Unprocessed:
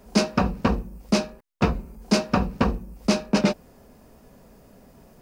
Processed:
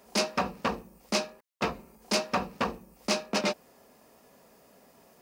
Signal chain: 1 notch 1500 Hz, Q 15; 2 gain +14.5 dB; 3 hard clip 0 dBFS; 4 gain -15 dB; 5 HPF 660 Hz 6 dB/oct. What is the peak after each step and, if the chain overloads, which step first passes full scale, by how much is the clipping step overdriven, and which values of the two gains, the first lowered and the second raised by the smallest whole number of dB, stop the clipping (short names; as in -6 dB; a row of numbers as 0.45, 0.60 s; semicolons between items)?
-7.0, +7.5, 0.0, -15.0, -13.5 dBFS; step 2, 7.5 dB; step 2 +6.5 dB, step 4 -7 dB